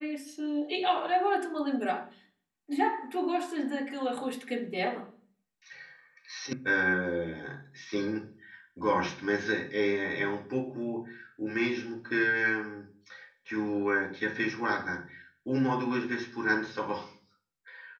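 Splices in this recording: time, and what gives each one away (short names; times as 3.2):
6.53 sound cut off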